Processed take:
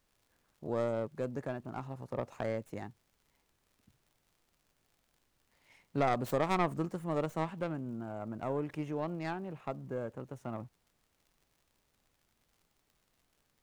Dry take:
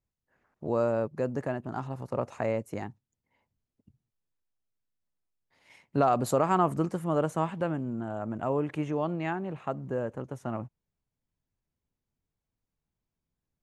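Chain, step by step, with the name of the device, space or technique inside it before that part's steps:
record under a worn stylus (stylus tracing distortion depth 0.29 ms; surface crackle; pink noise bed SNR 38 dB)
level −6.5 dB

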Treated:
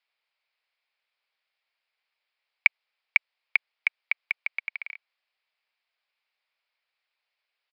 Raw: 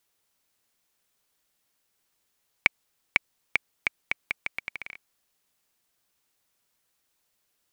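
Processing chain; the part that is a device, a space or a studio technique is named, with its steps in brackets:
musical greeting card (downsampling to 11,025 Hz; high-pass filter 550 Hz 24 dB per octave; parametric band 2,300 Hz +9 dB 0.51 octaves)
level −5 dB

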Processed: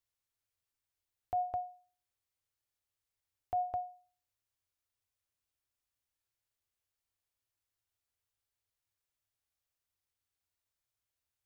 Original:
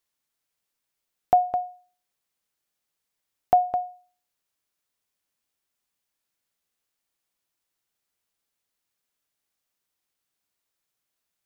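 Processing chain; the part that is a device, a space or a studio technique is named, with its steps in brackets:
car stereo with a boomy subwoofer (low shelf with overshoot 130 Hz +8 dB, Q 3; brickwall limiter −19 dBFS, peak gain reduction 11 dB)
level −8.5 dB

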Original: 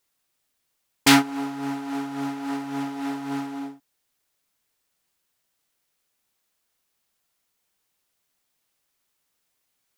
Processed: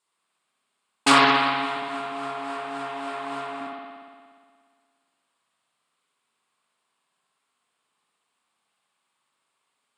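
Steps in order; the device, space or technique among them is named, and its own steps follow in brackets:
0:01.76–0:03.61: high-pass filter 130 Hz 12 dB per octave
spring reverb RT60 1.9 s, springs 59 ms, chirp 40 ms, DRR −4.5 dB
full-range speaker at full volume (highs frequency-modulated by the lows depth 0.46 ms; loudspeaker in its box 200–8,900 Hz, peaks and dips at 320 Hz −5 dB, 520 Hz −4 dB, 1,100 Hz +8 dB, 1,900 Hz −3 dB, 6,000 Hz −10 dB, 8,700 Hz +6 dB)
level −1 dB

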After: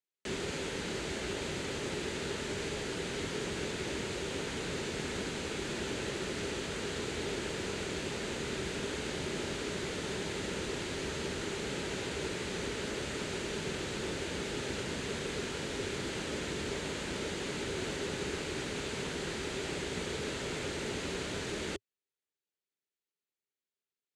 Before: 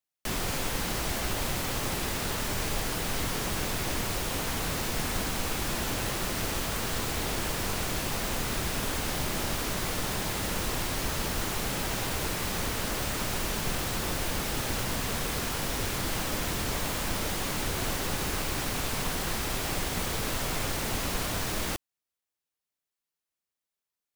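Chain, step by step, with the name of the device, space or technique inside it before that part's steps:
car door speaker (loudspeaker in its box 81–7,500 Hz, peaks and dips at 110 Hz −6 dB, 400 Hz +9 dB, 730 Hz −7 dB, 1,100 Hz −8 dB, 5,400 Hz −7 dB)
level −4 dB

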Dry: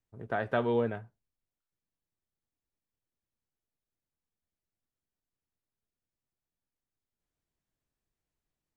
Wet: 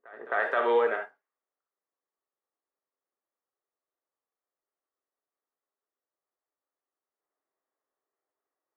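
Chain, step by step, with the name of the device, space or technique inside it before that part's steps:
laptop speaker (high-pass filter 380 Hz 24 dB per octave; parametric band 1,200 Hz +10.5 dB 0.51 octaves; parametric band 1,900 Hz +10.5 dB 0.36 octaves; brickwall limiter −21 dBFS, peak gain reduction 9 dB)
low-pass that shuts in the quiet parts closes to 800 Hz, open at −31 dBFS
echo ahead of the sound 263 ms −22 dB
reverb whose tail is shaped and stops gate 90 ms rising, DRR 5 dB
level +5 dB

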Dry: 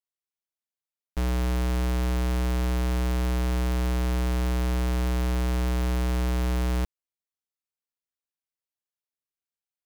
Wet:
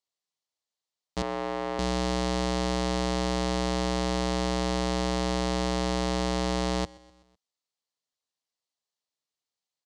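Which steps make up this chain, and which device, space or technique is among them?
full-range speaker at full volume (highs frequency-modulated by the lows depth 0.25 ms; loudspeaker in its box 150–7,900 Hz, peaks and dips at 210 Hz −6 dB, 340 Hz −6 dB, 1,500 Hz −9 dB, 2,400 Hz −6 dB, 4,300 Hz +4 dB)
0:01.22–0:01.79: three-way crossover with the lows and the highs turned down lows −17 dB, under 280 Hz, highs −16 dB, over 2,500 Hz
repeating echo 126 ms, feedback 57%, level −23.5 dB
level +6.5 dB

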